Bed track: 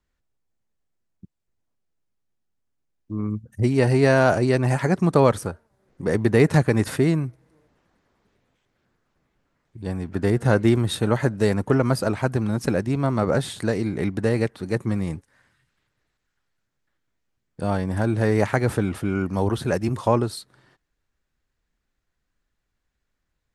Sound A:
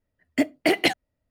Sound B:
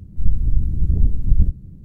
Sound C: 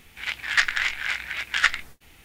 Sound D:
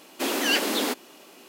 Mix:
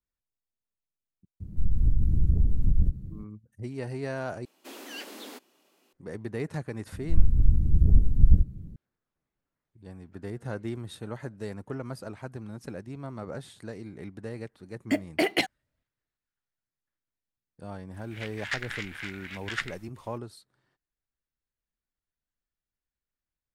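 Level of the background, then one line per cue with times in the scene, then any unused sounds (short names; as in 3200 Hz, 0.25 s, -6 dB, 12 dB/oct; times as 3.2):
bed track -16.5 dB
1.4 add B -1 dB + limiter -12.5 dBFS
4.45 replace with D -17.5 dB
6.92 add B -2.5 dB
14.53 add A -4.5 dB
17.94 add C -12 dB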